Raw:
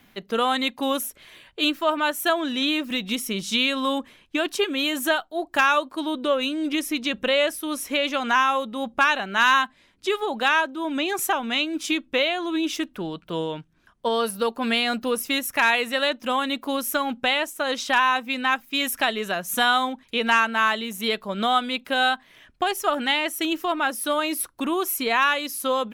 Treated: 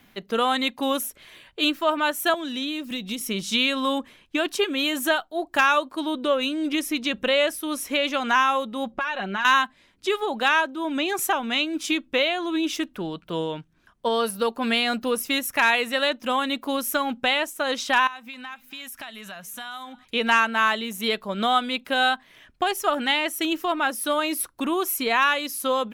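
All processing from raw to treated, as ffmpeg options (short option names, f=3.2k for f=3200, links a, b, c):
-filter_complex "[0:a]asettb=1/sr,asplit=3[a][b][c];[a]atrim=end=2.344[d];[b]atrim=start=2.34:end=3.21,asetpts=PTS-STARTPTS,afade=t=in:d=0.004:c=qsin,afade=t=out:st=0.866:d=0.004:c=qsin,acrossover=split=280|790|3000[e][f][g][h];[e]acompressor=threshold=-34dB:ratio=3[i];[f]acompressor=threshold=-39dB:ratio=3[j];[g]acompressor=threshold=-43dB:ratio=3[k];[h]acompressor=threshold=-33dB:ratio=3[l];[i][j][k][l]amix=inputs=4:normalize=0,asoftclip=type=hard:threshold=-19dB[m];[c]atrim=start=3.206[n];[d][m]acrossfade=d=0.004:c1=hsin:c2=qsin[o];[o][n]acrossfade=d=0.004:c1=qsin:c2=hsin,asettb=1/sr,asplit=3[p][q][r];[p]atrim=end=8.914[s];[q]atrim=start=8.91:end=9.45,asetpts=PTS-STARTPTS,afade=t=in:d=0.004:c=qsin,afade=t=out:st=0.536:d=0.004:c=qsin,aemphasis=mode=reproduction:type=50fm,aecho=1:1:5.5:0.56,atrim=end_sample=23814,acompressor=threshold=-23dB:ratio=6:attack=3.2:release=140:knee=1:detection=peak[t];[r]atrim=start=9.446[u];[s][t]acrossfade=d=0.004:c1=hsin:c2=qsin[v];[v][u]acrossfade=d=0.004:c1=qsin:c2=hsin,asettb=1/sr,asplit=3[w][x][y];[w]atrim=end=18.074[z];[x]atrim=start=18.07:end=20.05,asetpts=PTS-STARTPTS,afade=t=in:d=0.004:c=qsin,afade=t=out:st=1.976:d=0.004:c=qsin,equalizer=f=390:t=o:w=0.78:g=-14,acompressor=threshold=-38dB:ratio=3:attack=3.2:release=140:knee=1:detection=peak,aecho=1:1:267:0.075,atrim=end_sample=87318[aa];[y]atrim=start=20.046[ab];[z][aa]acrossfade=d=0.004:c1=hsin:c2=qsin[ac];[ac][ab]acrossfade=d=0.004:c1=qsin:c2=hsin"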